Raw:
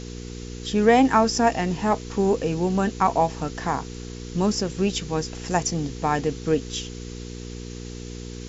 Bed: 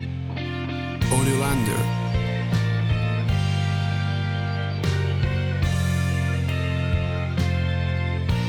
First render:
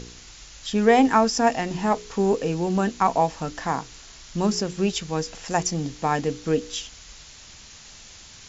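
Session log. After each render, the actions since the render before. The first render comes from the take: de-hum 60 Hz, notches 8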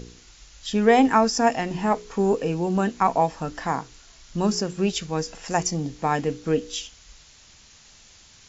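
noise print and reduce 6 dB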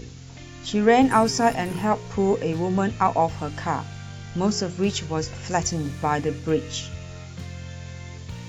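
add bed -13.5 dB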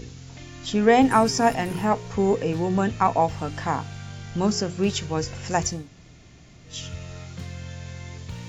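5.77–6.75 room tone, crossfade 0.24 s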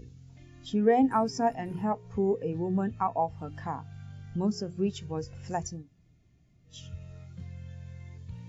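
compressor 1.5:1, threshold -31 dBFS, peak gain reduction 7 dB; spectral expander 1.5:1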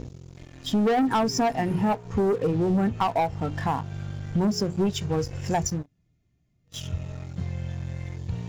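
sample leveller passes 3; compressor, threshold -20 dBFS, peak gain reduction 5.5 dB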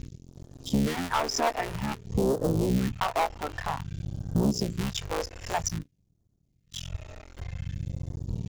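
cycle switcher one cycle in 3, muted; phaser stages 2, 0.52 Hz, lowest notch 140–2200 Hz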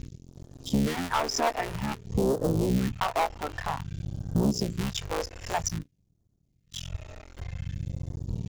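nothing audible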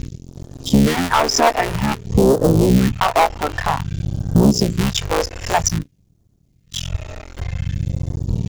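gain +12 dB; limiter -3 dBFS, peak gain reduction 2 dB

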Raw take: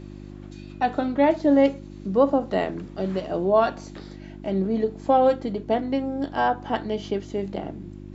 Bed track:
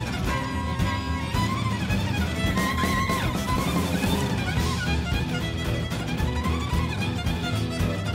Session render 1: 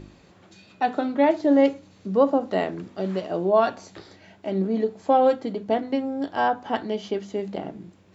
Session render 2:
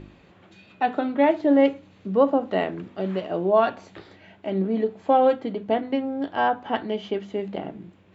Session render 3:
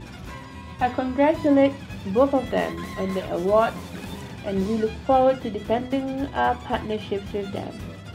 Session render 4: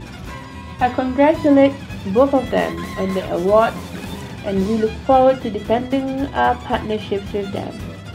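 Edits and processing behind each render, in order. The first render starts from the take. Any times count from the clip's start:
de-hum 50 Hz, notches 7
resonant high shelf 4000 Hz -8 dB, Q 1.5
add bed track -11.5 dB
gain +5.5 dB; limiter -2 dBFS, peak gain reduction 2 dB

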